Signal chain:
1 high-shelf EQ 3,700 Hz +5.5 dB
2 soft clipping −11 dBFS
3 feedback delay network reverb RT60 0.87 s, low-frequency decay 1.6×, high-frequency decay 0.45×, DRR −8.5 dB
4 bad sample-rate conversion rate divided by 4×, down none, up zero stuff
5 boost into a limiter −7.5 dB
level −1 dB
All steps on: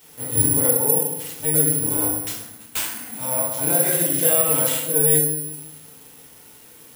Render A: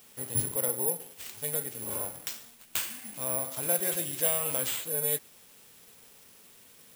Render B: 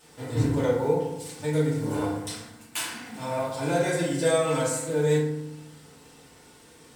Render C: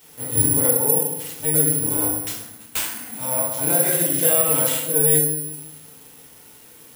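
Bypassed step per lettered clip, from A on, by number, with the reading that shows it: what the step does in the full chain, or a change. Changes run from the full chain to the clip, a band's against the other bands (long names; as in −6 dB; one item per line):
3, change in momentary loudness spread −3 LU
4, 8 kHz band −17.0 dB
2, distortion level −27 dB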